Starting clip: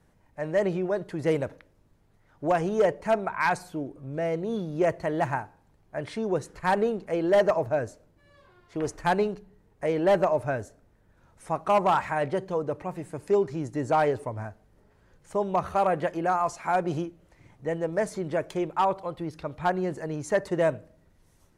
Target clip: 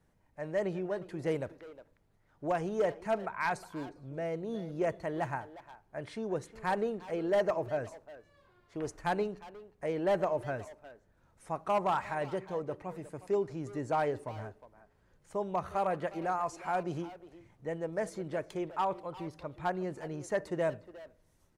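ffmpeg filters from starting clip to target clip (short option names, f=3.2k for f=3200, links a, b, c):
-filter_complex "[0:a]asplit=2[a][b];[b]adelay=360,highpass=300,lowpass=3.4k,asoftclip=type=hard:threshold=-25dB,volume=-13dB[c];[a][c]amix=inputs=2:normalize=0,volume=-7.5dB"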